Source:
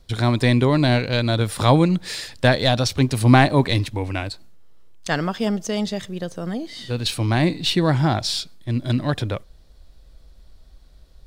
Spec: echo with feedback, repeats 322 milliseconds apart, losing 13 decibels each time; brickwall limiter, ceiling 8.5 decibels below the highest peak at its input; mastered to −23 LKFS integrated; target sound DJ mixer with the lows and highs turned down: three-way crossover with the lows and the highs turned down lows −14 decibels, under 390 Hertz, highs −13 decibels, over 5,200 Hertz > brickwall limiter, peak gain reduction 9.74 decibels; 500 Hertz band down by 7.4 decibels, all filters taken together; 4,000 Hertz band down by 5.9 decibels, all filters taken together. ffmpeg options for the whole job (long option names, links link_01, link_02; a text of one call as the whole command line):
ffmpeg -i in.wav -filter_complex "[0:a]equalizer=frequency=500:width_type=o:gain=-7,equalizer=frequency=4000:width_type=o:gain=-5,alimiter=limit=-12.5dB:level=0:latency=1,acrossover=split=390 5200:gain=0.2 1 0.224[link_01][link_02][link_03];[link_01][link_02][link_03]amix=inputs=3:normalize=0,aecho=1:1:322|644|966:0.224|0.0493|0.0108,volume=10.5dB,alimiter=limit=-11dB:level=0:latency=1" out.wav